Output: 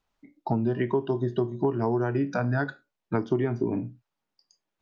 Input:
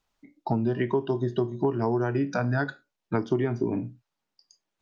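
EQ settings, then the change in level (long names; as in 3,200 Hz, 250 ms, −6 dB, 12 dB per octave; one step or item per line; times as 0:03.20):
high-shelf EQ 4,000 Hz −7 dB
0.0 dB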